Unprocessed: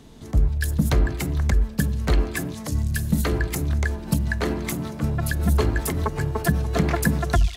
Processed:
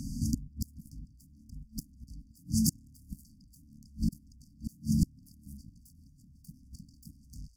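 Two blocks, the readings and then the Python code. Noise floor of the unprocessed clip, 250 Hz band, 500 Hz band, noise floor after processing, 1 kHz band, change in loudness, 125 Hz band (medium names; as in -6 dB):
-37 dBFS, -9.0 dB, under -40 dB, -60 dBFS, under -40 dB, -10.0 dB, -15.5 dB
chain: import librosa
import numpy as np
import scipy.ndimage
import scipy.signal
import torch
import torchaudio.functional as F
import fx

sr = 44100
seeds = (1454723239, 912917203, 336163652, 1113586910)

y = fx.cheby_harmonics(x, sr, harmonics=(3, 4, 6, 7), levels_db=(-30, -39, -22, -10), full_scale_db=-8.0)
y = fx.gate_flip(y, sr, shuts_db=-23.0, range_db=-36)
y = fx.brickwall_bandstop(y, sr, low_hz=290.0, high_hz=4500.0)
y = y * 10.0 ** (8.0 / 20.0)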